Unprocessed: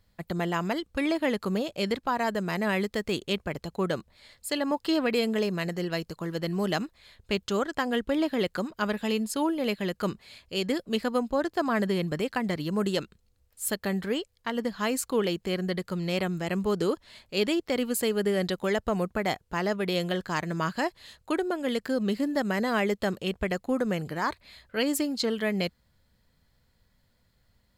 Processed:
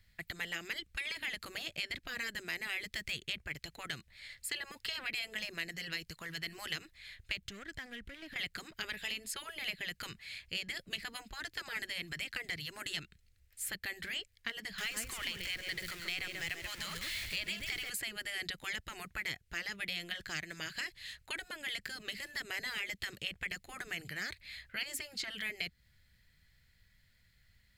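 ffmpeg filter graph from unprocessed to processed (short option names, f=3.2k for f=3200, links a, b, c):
-filter_complex "[0:a]asettb=1/sr,asplit=3[a][b][c];[a]atrim=end=7.454[d];[b]atrim=start=7.45:end=8.36,asetpts=PTS-STARTPTS,afade=t=in:d=0.004:c=qsin,afade=t=out:st=0.906:d=0.004:c=qsin,lowshelf=f=250:g=10.5,acompressor=threshold=-34dB:ratio=6:attack=3.2:release=140:knee=1:detection=peak,asoftclip=type=hard:threshold=-32.5dB[e];[c]atrim=start=8.356[f];[d][e]acrossfade=d=0.004:c1=hsin:c2=qsin[g];[g][f]acrossfade=d=0.004:c1=qsin:c2=hsin,asettb=1/sr,asplit=3[h][i][j];[h]atrim=end=14.784[k];[i]atrim=start=14.78:end=17.9,asetpts=PTS-STARTPTS,afade=t=in:d=0.004:c=qsin,afade=t=out:st=3.116:d=0.004:c=qsin,aeval=exprs='val(0)+0.5*0.0178*sgn(val(0))':c=same,aecho=1:1:135:0.355,atrim=end_sample=137592[l];[j]atrim=start=17.896[m];[k][l]acrossfade=d=0.004:c1=hsin:c2=qsin[n];[n][m]acrossfade=d=0.004:c1=qsin:c2=hsin,afftfilt=real='re*lt(hypot(re,im),0.178)':imag='im*lt(hypot(re,im),0.178)':win_size=1024:overlap=0.75,equalizer=f=250:t=o:w=1:g=-8,equalizer=f=500:t=o:w=1:g=-9,equalizer=f=1k:t=o:w=1:g=-11,equalizer=f=2k:t=o:w=1:g=10,acrossover=split=660|2500[o][p][q];[o]acompressor=threshold=-48dB:ratio=4[r];[p]acompressor=threshold=-45dB:ratio=4[s];[q]acompressor=threshold=-39dB:ratio=4[t];[r][s][t]amix=inputs=3:normalize=0"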